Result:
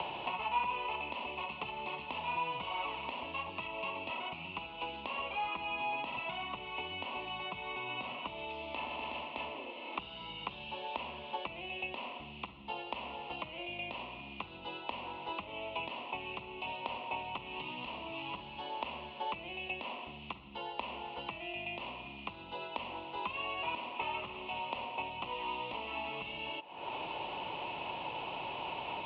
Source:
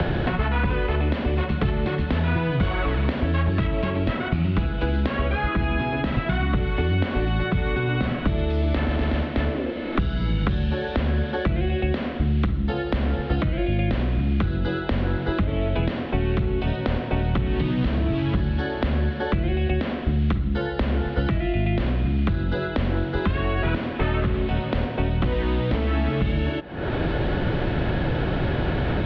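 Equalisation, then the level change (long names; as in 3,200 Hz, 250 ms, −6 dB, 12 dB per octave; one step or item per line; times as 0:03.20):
pair of resonant band-passes 1,600 Hz, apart 1.5 octaves
+1.0 dB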